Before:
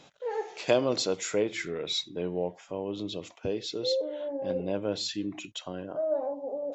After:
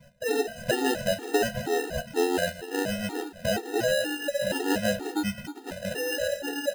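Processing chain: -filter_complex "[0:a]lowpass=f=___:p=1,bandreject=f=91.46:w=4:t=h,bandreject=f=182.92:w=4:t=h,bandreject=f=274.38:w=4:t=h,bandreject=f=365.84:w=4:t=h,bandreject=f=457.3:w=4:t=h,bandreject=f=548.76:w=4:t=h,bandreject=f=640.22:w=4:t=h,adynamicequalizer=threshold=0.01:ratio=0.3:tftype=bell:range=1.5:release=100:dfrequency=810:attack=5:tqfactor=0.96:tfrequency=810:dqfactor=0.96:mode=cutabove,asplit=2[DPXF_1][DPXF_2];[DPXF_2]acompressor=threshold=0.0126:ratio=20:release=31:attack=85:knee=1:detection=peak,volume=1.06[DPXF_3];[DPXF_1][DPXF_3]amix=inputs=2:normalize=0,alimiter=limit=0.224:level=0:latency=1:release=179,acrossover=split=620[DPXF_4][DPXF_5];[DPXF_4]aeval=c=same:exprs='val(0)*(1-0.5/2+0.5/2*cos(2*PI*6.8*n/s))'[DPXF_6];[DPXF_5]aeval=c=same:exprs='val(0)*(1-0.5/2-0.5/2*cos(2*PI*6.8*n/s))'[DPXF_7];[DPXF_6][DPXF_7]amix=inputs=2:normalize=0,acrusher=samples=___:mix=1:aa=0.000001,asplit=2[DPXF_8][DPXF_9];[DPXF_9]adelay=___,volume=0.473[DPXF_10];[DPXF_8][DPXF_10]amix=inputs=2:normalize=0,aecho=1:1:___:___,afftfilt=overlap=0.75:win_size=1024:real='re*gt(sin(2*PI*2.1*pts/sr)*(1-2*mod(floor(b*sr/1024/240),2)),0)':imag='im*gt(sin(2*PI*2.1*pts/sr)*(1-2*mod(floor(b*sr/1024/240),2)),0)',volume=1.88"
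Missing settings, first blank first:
1400, 39, 14, 206, 0.211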